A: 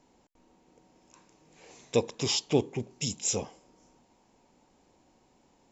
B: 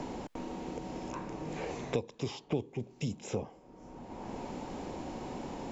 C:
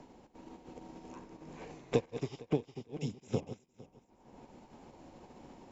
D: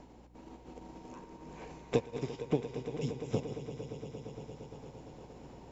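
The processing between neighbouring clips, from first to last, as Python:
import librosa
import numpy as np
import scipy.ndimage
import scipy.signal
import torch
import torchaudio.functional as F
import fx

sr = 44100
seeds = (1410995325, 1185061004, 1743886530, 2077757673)

y1 = fx.lowpass(x, sr, hz=1100.0, slope=6)
y1 = fx.band_squash(y1, sr, depth_pct=100)
y1 = F.gain(torch.from_numpy(y1), 1.5).numpy()
y2 = fx.reverse_delay_fb(y1, sr, ms=229, feedback_pct=64, wet_db=-5)
y2 = fx.upward_expand(y2, sr, threshold_db=-48.0, expansion=2.5)
y2 = F.gain(torch.from_numpy(y2), 4.0).numpy()
y3 = fx.echo_swell(y2, sr, ms=115, loudest=5, wet_db=-14.5)
y3 = fx.add_hum(y3, sr, base_hz=60, snr_db=20)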